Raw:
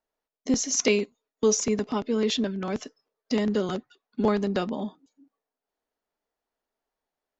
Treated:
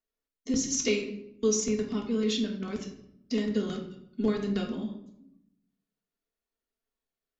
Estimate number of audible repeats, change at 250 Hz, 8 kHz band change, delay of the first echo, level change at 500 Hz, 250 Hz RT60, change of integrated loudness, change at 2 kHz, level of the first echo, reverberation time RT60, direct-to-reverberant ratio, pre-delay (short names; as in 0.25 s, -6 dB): none, -2.0 dB, n/a, none, -4.5 dB, 1.1 s, -3.5 dB, -5.0 dB, none, 0.75 s, -0.5 dB, 3 ms